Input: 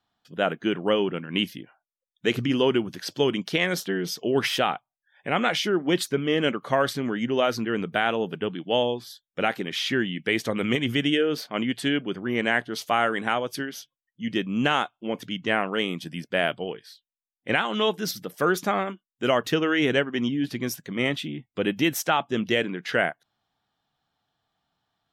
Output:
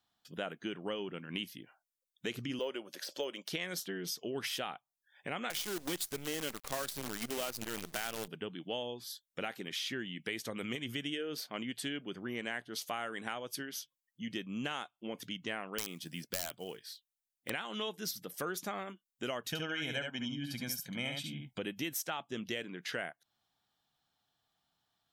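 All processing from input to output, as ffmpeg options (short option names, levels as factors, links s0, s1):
-filter_complex "[0:a]asettb=1/sr,asplit=3[s0][s1][s2];[s0]atrim=end=2.594[s3];[s1]atrim=start=2.59:end=3.48,asetpts=PTS-STARTPTS,afade=t=in:d=0.004:c=qsin,afade=t=out:st=0.886:d=0.004:c=qsin,highpass=410,equalizer=f=560:t=o:w=0.32:g=13,deesser=0.85[s4];[s2]atrim=start=3.476[s5];[s3][s4]acrossfade=d=0.004:c1=hsin:c2=qsin[s6];[s6][s5]acrossfade=d=0.004:c1=qsin:c2=hsin,asettb=1/sr,asplit=3[s7][s8][s9];[s7]atrim=end=5.504[s10];[s8]atrim=start=5.5:end=8.28,asetpts=PTS-STARTPTS,afade=t=in:d=0.004:c=qsin,afade=t=out:st=2.776:d=0.004:c=qsin,highshelf=f=11000:g=8.5,acompressor=mode=upward:threshold=0.0562:ratio=2.5:attack=3.2:release=140:knee=2.83:detection=peak,acrusher=bits=5:dc=4:mix=0:aa=0.000001[s11];[s9]atrim=start=8.276[s12];[s10][s11]acrossfade=d=0.004:c1=hsin:c2=qsin[s13];[s13][s12]acrossfade=d=0.004:c1=qsin:c2=hsin,asettb=1/sr,asplit=3[s14][s15][s16];[s14]atrim=end=15.784[s17];[s15]atrim=start=15.78:end=17.5,asetpts=PTS-STARTPTS,afade=t=in:d=0.004:c=qsin,afade=t=out:st=1.716:d=0.004:c=qsin,acrusher=bits=7:mode=log:mix=0:aa=0.000001,aeval=exprs='(mod(5.96*val(0)+1,2)-1)/5.96':c=same[s18];[s16]atrim=start=17.496[s19];[s17][s18]acrossfade=d=0.004:c1=hsin:c2=qsin[s20];[s20][s19]acrossfade=d=0.004:c1=qsin:c2=hsin,asettb=1/sr,asplit=3[s21][s22][s23];[s21]atrim=end=19.484[s24];[s22]atrim=start=19.48:end=21.59,asetpts=PTS-STARTPTS,afade=t=in:d=0.004:c=qsin,afade=t=out:st=2.106:d=0.004:c=qsin,aecho=1:1:1.3:0.74,atrim=end_sample=93051,aecho=1:1:70:0.562,atrim=end_sample=93051[s25];[s23]atrim=start=21.586[s26];[s24][s25]acrossfade=d=0.004:c1=hsin:c2=qsin[s27];[s27][s26]acrossfade=d=0.004:c1=qsin:c2=hsin,highshelf=f=4000:g=11.5,acompressor=threshold=0.0224:ratio=2.5,volume=0.473"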